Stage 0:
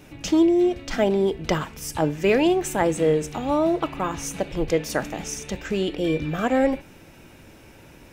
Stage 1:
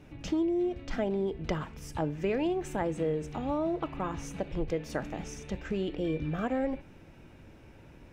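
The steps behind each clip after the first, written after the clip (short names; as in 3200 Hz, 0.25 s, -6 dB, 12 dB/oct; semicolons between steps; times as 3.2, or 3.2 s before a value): LPF 2600 Hz 6 dB/oct; low shelf 170 Hz +6 dB; compressor 2.5:1, threshold -21 dBFS, peak gain reduction 6 dB; gain -7 dB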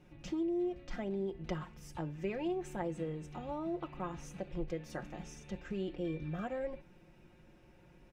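comb 5.6 ms, depth 60%; gain -9 dB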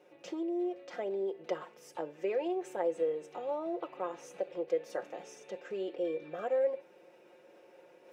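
reverse; upward compressor, threshold -52 dBFS; reverse; resonant high-pass 480 Hz, resonance Q 3.5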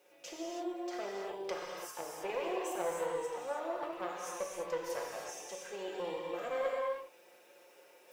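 tube stage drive 29 dB, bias 0.75; RIAA curve recording; non-linear reverb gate 0.35 s flat, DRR -2.5 dB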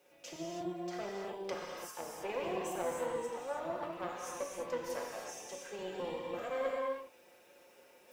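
octaver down 1 oct, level -5 dB; gain -1 dB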